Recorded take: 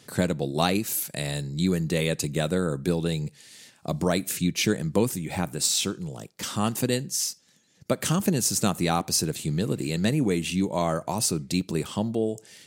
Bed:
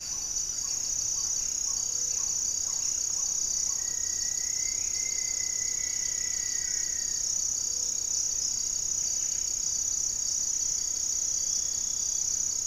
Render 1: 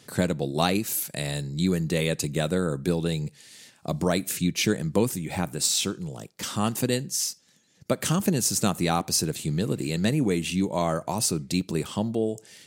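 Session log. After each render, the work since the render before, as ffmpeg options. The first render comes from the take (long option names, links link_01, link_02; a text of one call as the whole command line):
ffmpeg -i in.wav -af anull out.wav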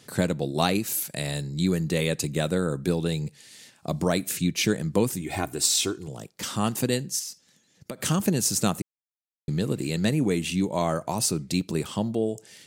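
ffmpeg -i in.wav -filter_complex "[0:a]asettb=1/sr,asplit=3[link_01][link_02][link_03];[link_01]atrim=end=5.214[link_04];[link_02]atrim=start=5.21:end=6.08,asetpts=PTS-STARTPTS,afade=type=in:duration=0.004:curve=qsin,afade=type=out:start_time=0.866:duration=0.004:curve=qsin,aecho=1:1:2.8:0.65,atrim=end_sample=38367[link_05];[link_03]atrim=start=6.076[link_06];[link_04][link_05]acrossfade=duration=0.004:curve1=hsin:curve2=qsin[link_07];[link_07][link_06]acrossfade=duration=0.004:curve1=qsin:curve2=hsin,asettb=1/sr,asplit=3[link_08][link_09][link_10];[link_08]atrim=end=7.194[link_11];[link_09]atrim=start=7.19:end=8.03,asetpts=PTS-STARTPTS,afade=type=in:duration=0.004:curve=qsin,afade=type=out:start_time=0.836:duration=0.004:curve=qsin,acompressor=threshold=-31dB:ratio=6:attack=3.2:release=140:knee=1:detection=peak[link_12];[link_10]atrim=start=8.026[link_13];[link_11][link_12]acrossfade=duration=0.004:curve1=hsin:curve2=qsin[link_14];[link_14][link_13]acrossfade=duration=0.004:curve1=qsin:curve2=hsin,asplit=3[link_15][link_16][link_17];[link_15]atrim=end=8.82,asetpts=PTS-STARTPTS,afade=type=out:start_time=8.816:duration=0.004:curve=hsin[link_18];[link_16]atrim=start=8.82:end=9.48,asetpts=PTS-STARTPTS,volume=0[link_19];[link_17]atrim=start=9.48,asetpts=PTS-STARTPTS,afade=type=in:duration=0.004:curve=hsin[link_20];[link_18][link_19][link_20]concat=n=3:v=0:a=1" out.wav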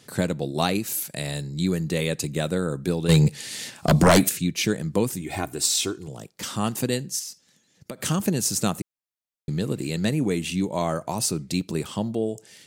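ffmpeg -i in.wav -filter_complex "[0:a]asplit=3[link_01][link_02][link_03];[link_01]afade=type=out:start_time=3.08:duration=0.02[link_04];[link_02]aeval=exprs='0.316*sin(PI/2*3.16*val(0)/0.316)':channel_layout=same,afade=type=in:start_time=3.08:duration=0.02,afade=type=out:start_time=4.28:duration=0.02[link_05];[link_03]afade=type=in:start_time=4.28:duration=0.02[link_06];[link_04][link_05][link_06]amix=inputs=3:normalize=0" out.wav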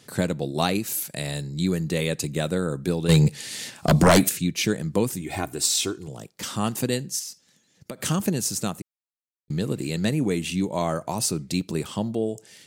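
ffmpeg -i in.wav -filter_complex "[0:a]asplit=2[link_01][link_02];[link_01]atrim=end=9.5,asetpts=PTS-STARTPTS,afade=type=out:start_time=8.19:duration=1.31[link_03];[link_02]atrim=start=9.5,asetpts=PTS-STARTPTS,afade=type=in:duration=0.004:curve=hsin[link_04];[link_03][link_04]concat=n=2:v=0:a=1" out.wav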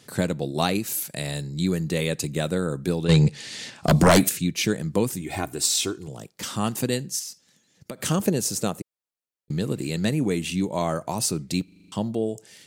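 ffmpeg -i in.wav -filter_complex "[0:a]asettb=1/sr,asplit=3[link_01][link_02][link_03];[link_01]atrim=end=3.054[link_04];[link_02]atrim=start=3.05:end=3.84,asetpts=PTS-STARTPTS,afade=type=in:duration=0.004:curve=qsin,afade=type=out:start_time=0.786:duration=0.004:curve=qsin,lowpass=6200[link_05];[link_03]atrim=start=3.836[link_06];[link_04][link_05]acrossfade=duration=0.004:curve1=hsin:curve2=qsin[link_07];[link_07][link_06]acrossfade=duration=0.004:curve1=qsin:curve2=hsin,asettb=1/sr,asplit=3[link_08][link_09][link_10];[link_08]atrim=end=8.114[link_11];[link_09]atrim=start=8.11:end=9.52,asetpts=PTS-STARTPTS,afade=type=in:duration=0.004:curve=qsin,afade=type=out:start_time=1.406:duration=0.004:curve=qsin,equalizer=frequency=490:width=1.5:gain=6.5[link_12];[link_10]atrim=start=9.516[link_13];[link_11][link_12]acrossfade=duration=0.004:curve1=hsin:curve2=qsin[link_14];[link_14][link_13]acrossfade=duration=0.004:curve1=qsin:curve2=hsin,asplit=8[link_15][link_16][link_17][link_18][link_19][link_20][link_21][link_22];[link_15]atrim=end=11.682[link_23];[link_16]atrim=start=11.638:end=11.682[link_24];[link_17]atrim=start=11.638:end=11.682[link_25];[link_18]atrim=start=11.638:end=11.682[link_26];[link_19]atrim=start=11.638:end=11.682[link_27];[link_20]atrim=start=11.638:end=11.682[link_28];[link_21]atrim=start=11.638:end=11.682[link_29];[link_22]atrim=start=11.918[link_30];[link_23][link_24]acrossfade=duration=0.004:curve1=hsin:curve2=hsin[link_31];[link_31][link_25]acrossfade=duration=0.004:curve1=hsin:curve2=hsin[link_32];[link_32][link_26]acrossfade=duration=0.004:curve1=hsin:curve2=hsin[link_33];[link_33][link_27]acrossfade=duration=0.004:curve1=hsin:curve2=hsin[link_34];[link_34][link_28]acrossfade=duration=0.004:curve1=hsin:curve2=hsin[link_35];[link_35][link_29]acrossfade=duration=0.004:curve1=hsin:curve2=hsin[link_36];[link_36][link_30]acrossfade=duration=0.004:curve1=hsin:curve2=hsin" out.wav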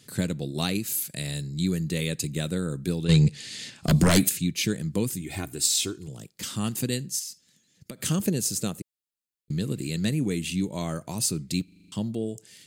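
ffmpeg -i in.wav -af "equalizer=frequency=810:width_type=o:width=2:gain=-11,bandreject=frequency=5700:width=16" out.wav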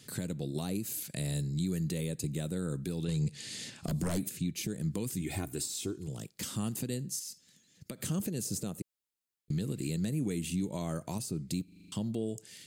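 ffmpeg -i in.wav -filter_complex "[0:a]acrossover=split=1000|6600[link_01][link_02][link_03];[link_01]acompressor=threshold=-25dB:ratio=4[link_04];[link_02]acompressor=threshold=-44dB:ratio=4[link_05];[link_03]acompressor=threshold=-38dB:ratio=4[link_06];[link_04][link_05][link_06]amix=inputs=3:normalize=0,alimiter=limit=-24dB:level=0:latency=1:release=255" out.wav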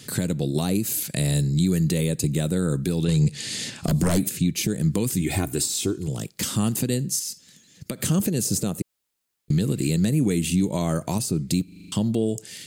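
ffmpeg -i in.wav -af "volume=11.5dB" out.wav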